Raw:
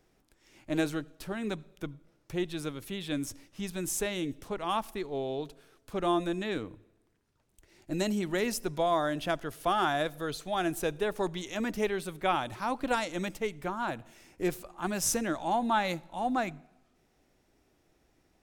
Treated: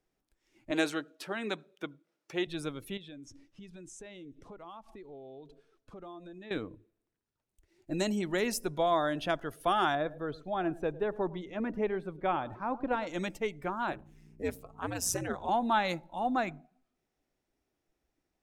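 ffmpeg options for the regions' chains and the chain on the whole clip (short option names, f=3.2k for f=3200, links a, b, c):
-filter_complex "[0:a]asettb=1/sr,asplit=3[a][b][c];[a]atrim=end=0.714[d];[b]atrim=start=0.71:end=2.47,asetpts=PTS-STARTPTS,afade=t=in:d=0.004:c=qsin,afade=t=out:st=1.756:d=0.004:c=qsin,highpass=240,equalizer=f=3k:w=0.31:g=4.5[e];[c]atrim=start=2.466[f];[d][e]acrossfade=d=0.004:c1=hsin:c2=qsin[g];[g][f]acrossfade=d=0.004:c1=qsin:c2=hsin,asettb=1/sr,asplit=3[h][i][j];[h]atrim=end=2.974[k];[i]atrim=start=2.97:end=6.51,asetpts=PTS-STARTPTS,afade=t=in:d=0.004:c=qsin,afade=t=out:st=3.536:d=0.004:c=qsin,lowpass=7.3k,acompressor=threshold=-45dB:ratio=5:attack=3.2:release=140:knee=1:detection=peak[l];[j]atrim=start=6.506[m];[k][l]acrossfade=d=0.004:c1=hsin:c2=qsin[n];[n][m]acrossfade=d=0.004:c1=qsin:c2=hsin,asettb=1/sr,asplit=3[o][p][q];[o]atrim=end=9.954[r];[p]atrim=start=9.95:end=13.07,asetpts=PTS-STARTPTS,afade=t=in:d=0.004:c=qsin,afade=t=out:st=3.116:d=0.004:c=qsin,lowpass=f=1.1k:p=1,aecho=1:1:106:0.119,atrim=end_sample=137592[s];[q]atrim=start=13.066[t];[r][s]acrossfade=d=0.004:c1=hsin:c2=qsin[u];[u][t]acrossfade=d=0.004:c1=qsin:c2=hsin,asettb=1/sr,asplit=3[v][w][x];[v]atrim=end=13.924[y];[w]atrim=start=13.92:end=15.49,asetpts=PTS-STARTPTS,afade=t=in:d=0.004:c=qsin,afade=t=out:st=1.566:d=0.004:c=qsin,aeval=exprs='val(0)+0.00316*(sin(2*PI*60*n/s)+sin(2*PI*2*60*n/s)/2+sin(2*PI*3*60*n/s)/3+sin(2*PI*4*60*n/s)/4+sin(2*PI*5*60*n/s)/5)':c=same,aeval=exprs='val(0)*sin(2*PI*92*n/s)':c=same[z];[x]atrim=start=15.486[aa];[y][z]acrossfade=d=0.004:c1=hsin:c2=qsin[ab];[ab][aa]acrossfade=d=0.004:c1=qsin:c2=hsin,afftdn=nr=13:nf=-51,lowshelf=f=170:g=-3.5"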